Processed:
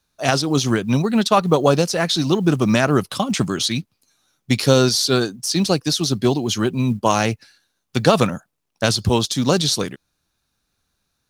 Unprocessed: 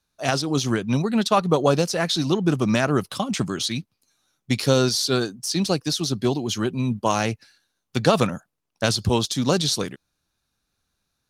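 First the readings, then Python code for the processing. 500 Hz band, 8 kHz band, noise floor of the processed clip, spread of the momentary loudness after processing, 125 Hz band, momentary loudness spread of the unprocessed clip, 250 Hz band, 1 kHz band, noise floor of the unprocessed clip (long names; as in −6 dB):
+4.0 dB, +4.0 dB, −74 dBFS, 7 LU, +4.0 dB, 7 LU, +4.0 dB, +4.0 dB, −77 dBFS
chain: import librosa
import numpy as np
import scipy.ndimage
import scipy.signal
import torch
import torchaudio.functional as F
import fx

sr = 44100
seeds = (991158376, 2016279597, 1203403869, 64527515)

p1 = fx.rider(x, sr, range_db=10, speed_s=2.0)
p2 = x + (p1 * librosa.db_to_amplitude(-2.5))
p3 = fx.quant_companded(p2, sr, bits=8)
y = p3 * librosa.db_to_amplitude(-1.0)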